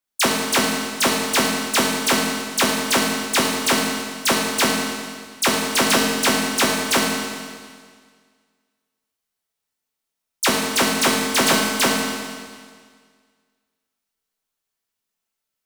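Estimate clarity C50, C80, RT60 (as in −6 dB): 1.0 dB, 2.5 dB, 1.8 s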